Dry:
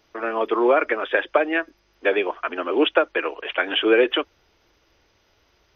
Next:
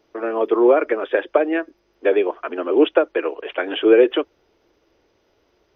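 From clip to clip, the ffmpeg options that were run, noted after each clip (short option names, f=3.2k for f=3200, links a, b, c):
-af "equalizer=f=390:w=0.64:g=11.5,volume=-6dB"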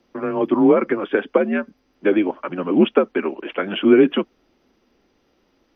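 -af "afreqshift=-90"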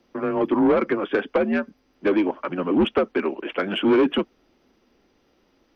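-af "asoftclip=type=tanh:threshold=-13dB"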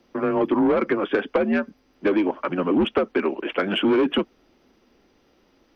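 -af "acompressor=threshold=-19dB:ratio=6,volume=2.5dB"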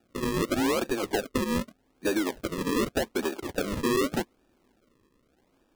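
-af "acrusher=samples=41:mix=1:aa=0.000001:lfo=1:lforange=41:lforate=0.84,volume=-6.5dB"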